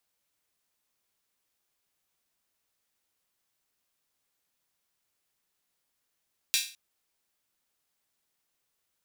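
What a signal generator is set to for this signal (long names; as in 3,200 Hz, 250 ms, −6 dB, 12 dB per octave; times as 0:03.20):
open synth hi-hat length 0.21 s, high-pass 3,000 Hz, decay 0.38 s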